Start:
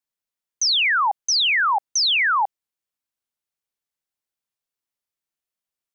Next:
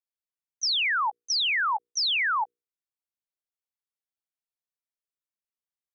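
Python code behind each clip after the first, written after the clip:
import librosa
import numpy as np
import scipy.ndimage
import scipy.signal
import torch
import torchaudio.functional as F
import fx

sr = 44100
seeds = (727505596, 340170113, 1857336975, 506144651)

y = fx.level_steps(x, sr, step_db=19)
y = fx.hum_notches(y, sr, base_hz=60, count=8)
y = y * 10.0 ** (-6.0 / 20.0)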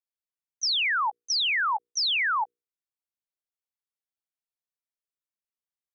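y = x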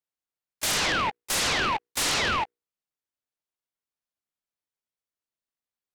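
y = fx.noise_mod_delay(x, sr, seeds[0], noise_hz=1300.0, depth_ms=0.088)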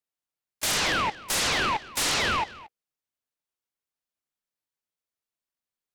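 y = x + 10.0 ** (-19.0 / 20.0) * np.pad(x, (int(228 * sr / 1000.0), 0))[:len(x)]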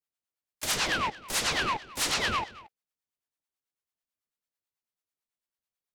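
y = fx.harmonic_tremolo(x, sr, hz=9.1, depth_pct=70, crossover_hz=620.0)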